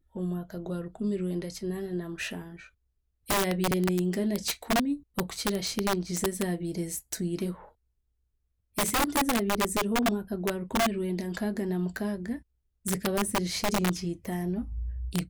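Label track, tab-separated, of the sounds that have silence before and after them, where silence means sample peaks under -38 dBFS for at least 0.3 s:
3.290000	7.540000	sound
8.780000	12.380000	sound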